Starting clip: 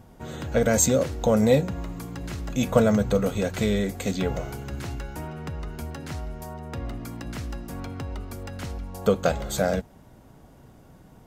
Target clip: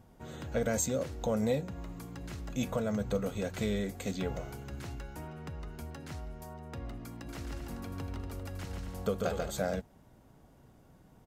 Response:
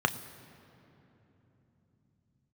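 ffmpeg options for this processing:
-filter_complex "[0:a]alimiter=limit=-12dB:level=0:latency=1:release=388,asplit=3[a][b][c];[a]afade=t=out:st=7.27:d=0.02[d];[b]aecho=1:1:140|238|306.6|354.6|388.2:0.631|0.398|0.251|0.158|0.1,afade=t=in:st=7.27:d=0.02,afade=t=out:st=9.49:d=0.02[e];[c]afade=t=in:st=9.49:d=0.02[f];[d][e][f]amix=inputs=3:normalize=0,volume=-8.5dB"

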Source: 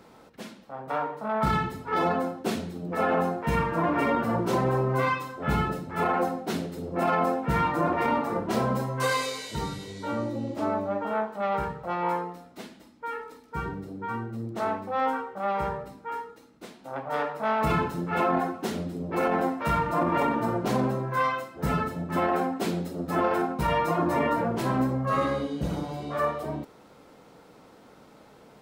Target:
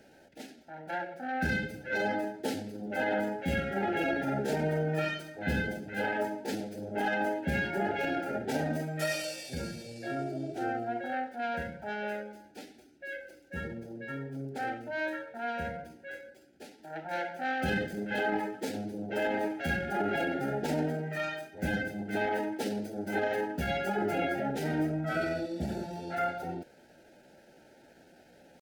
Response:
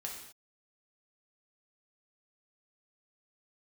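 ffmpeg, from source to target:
-af "asuperstop=centerf=920:order=12:qfactor=2.5,asetrate=52444,aresample=44100,atempo=0.840896,volume=-4.5dB"

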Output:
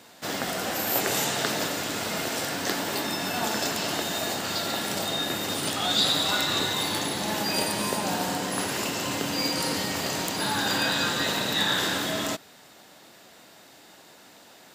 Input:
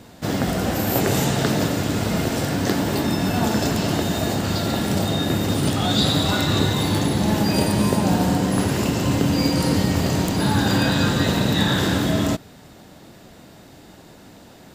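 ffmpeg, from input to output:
-af "highpass=f=1k:p=1"

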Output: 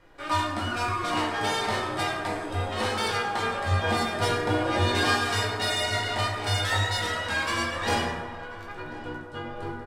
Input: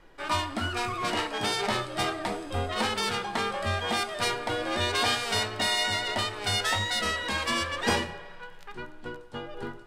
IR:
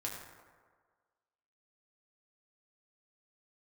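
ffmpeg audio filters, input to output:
-filter_complex "[0:a]asettb=1/sr,asplit=3[a][b][c];[a]atrim=end=3.714[d];[b]atrim=start=3.71:end=5.04,asetpts=PTS-STARTPTS,afade=t=in:d=0.004:c=qsin,afade=t=out:st=1.326:d=0.004:c=qsin,equalizer=f=140:w=0.3:g=7.5[e];[c]atrim=start=5.036[f];[d][e]acrossfade=d=0.004:c1=hsin:c2=qsin[g];[g][f]acrossfade=d=0.004:c1=qsin:c2=hsin,asplit=2[h][i];[i]asoftclip=type=tanh:threshold=-24dB,volume=-9dB[j];[h][j]amix=inputs=2:normalize=0,asplit=2[k][l];[l]adelay=1039,lowpass=f=1.5k:p=1,volume=-15.5dB,asplit=2[m][n];[n]adelay=1039,lowpass=f=1.5k:p=1,volume=0.53,asplit=2[o][p];[p]adelay=1039,lowpass=f=1.5k:p=1,volume=0.53,asplit=2[q][r];[r]adelay=1039,lowpass=f=1.5k:p=1,volume=0.53,asplit=2[s][t];[t]adelay=1039,lowpass=f=1.5k:p=1,volume=0.53[u];[k][m][o][q][s][u]amix=inputs=6:normalize=0[v];[1:a]atrim=start_sample=2205[w];[v][w]afir=irnorm=-1:irlink=0,volume=-1.5dB"

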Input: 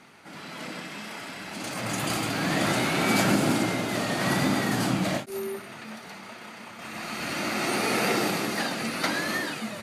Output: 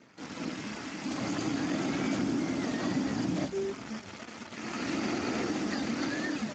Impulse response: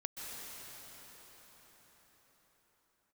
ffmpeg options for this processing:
-filter_complex "[0:a]equalizer=f=280:t=o:w=0.75:g=10,asplit=2[a][b];[b]alimiter=limit=-14.5dB:level=0:latency=1:release=109,volume=1dB[c];[a][c]amix=inputs=2:normalize=0,acompressor=threshold=-20dB:ratio=3,atempo=1.5,aeval=exprs='val(0)+0.00141*(sin(2*PI*60*n/s)+sin(2*PI*2*60*n/s)/2+sin(2*PI*3*60*n/s)/3+sin(2*PI*4*60*n/s)/4+sin(2*PI*5*60*n/s)/5)':c=same,acrusher=bits=6:dc=4:mix=0:aa=0.000001,asplit=5[d][e][f][g][h];[e]adelay=155,afreqshift=-120,volume=-14dB[i];[f]adelay=310,afreqshift=-240,volume=-22.6dB[j];[g]adelay=465,afreqshift=-360,volume=-31.3dB[k];[h]adelay=620,afreqshift=-480,volume=-39.9dB[l];[d][i][j][k][l]amix=inputs=5:normalize=0,volume=-9dB" -ar 16000 -c:a libspeex -b:a 13k

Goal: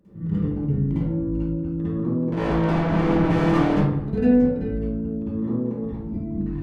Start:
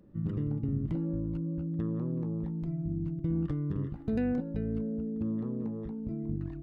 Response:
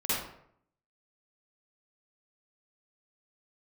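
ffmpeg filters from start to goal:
-filter_complex "[0:a]asettb=1/sr,asplit=3[a][b][c];[a]atrim=end=2.324[d];[b]atrim=start=2.32:end=3.74,asetpts=PTS-STARTPTS,afade=t=in:d=0.004:c=qsin,afade=t=out:st=1.416:d=0.004:c=qsin,asplit=2[e][f];[f]highpass=f=720:p=1,volume=43dB,asoftclip=type=tanh:threshold=-22dB[g];[e][g]amix=inputs=2:normalize=0,lowpass=f=1.9k:p=1,volume=-6dB[h];[c]atrim=start=3.736[i];[d][h]acrossfade=d=0.004:c1=hsin:c2=qsin[j];[j][i]acrossfade=d=0.004:c1=qsin:c2=hsin[k];[1:a]atrim=start_sample=2205,asetrate=40131,aresample=44100[l];[k][l]afir=irnorm=-1:irlink=0"

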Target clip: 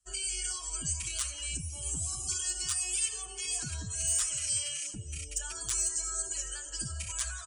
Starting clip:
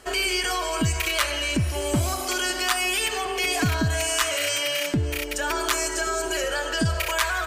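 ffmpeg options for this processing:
-filter_complex "[0:a]asplit=2[a][b];[b]acrusher=bits=6:mix=0:aa=0.000001,volume=-9dB[c];[a][c]amix=inputs=2:normalize=0,asoftclip=type=tanh:threshold=-6dB,aresample=22050,aresample=44100,equalizer=f=250:t=o:w=1:g=-11,equalizer=f=500:t=o:w=1:g=-5,equalizer=f=1k:t=o:w=1:g=-4,equalizer=f=2k:t=o:w=1:g=-10,equalizer=f=4k:t=o:w=1:g=-5,equalizer=f=8k:t=o:w=1:g=8,aecho=1:1:80|189|682:0.112|0.15|0.133,acrossover=split=210|1400[d][e][f];[d]alimiter=level_in=4dB:limit=-24dB:level=0:latency=1,volume=-4dB[g];[g][e][f]amix=inputs=3:normalize=0,afftdn=nr=18:nf=-38,aeval=exprs='0.316*(abs(mod(val(0)/0.316+3,4)-2)-1)':c=same,equalizer=f=610:w=0.55:g=-14,asplit=2[h][i];[i]adelay=6.6,afreqshift=2.8[j];[h][j]amix=inputs=2:normalize=1,volume=-5dB"

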